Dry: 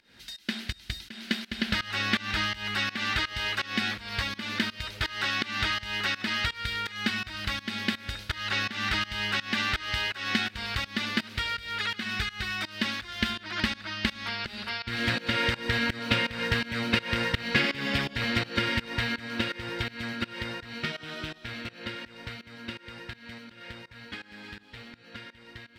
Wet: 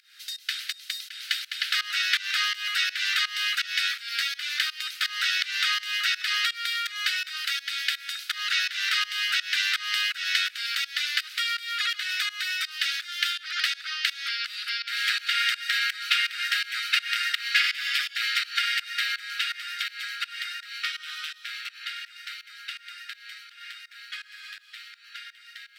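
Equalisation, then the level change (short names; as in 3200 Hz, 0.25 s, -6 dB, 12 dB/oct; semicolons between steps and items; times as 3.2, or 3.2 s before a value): brick-wall FIR high-pass 1200 Hz; tilt +3 dB/oct; 0.0 dB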